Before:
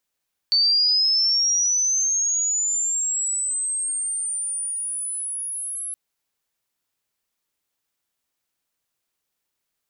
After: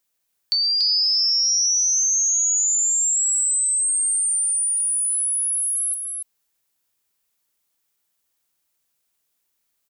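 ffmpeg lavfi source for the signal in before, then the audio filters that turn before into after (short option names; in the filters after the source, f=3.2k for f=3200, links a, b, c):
-f lavfi -i "aevalsrc='pow(10,(-15-12.5*t/5.42)/20)*sin(2*PI*(4500*t+6500*t*t/(2*5.42)))':d=5.42:s=44100"
-filter_complex "[0:a]highshelf=f=6.5k:g=7.5,acompressor=threshold=-19dB:ratio=6,asplit=2[a][b];[b]aecho=0:1:286:0.562[c];[a][c]amix=inputs=2:normalize=0"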